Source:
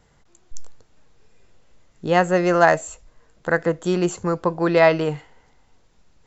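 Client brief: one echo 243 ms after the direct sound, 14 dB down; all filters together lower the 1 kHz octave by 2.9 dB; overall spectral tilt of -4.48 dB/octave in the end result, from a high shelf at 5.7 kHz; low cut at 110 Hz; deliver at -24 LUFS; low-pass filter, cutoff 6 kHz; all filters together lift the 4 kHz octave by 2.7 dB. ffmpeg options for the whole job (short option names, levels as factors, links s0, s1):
-af "highpass=110,lowpass=6000,equalizer=f=1000:t=o:g=-4.5,equalizer=f=4000:t=o:g=6,highshelf=f=5700:g=-4,aecho=1:1:243:0.2,volume=0.708"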